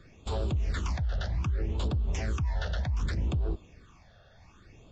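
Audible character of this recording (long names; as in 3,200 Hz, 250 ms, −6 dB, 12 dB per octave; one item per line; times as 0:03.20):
phaser sweep stages 8, 0.65 Hz, lowest notch 300–2,000 Hz
Ogg Vorbis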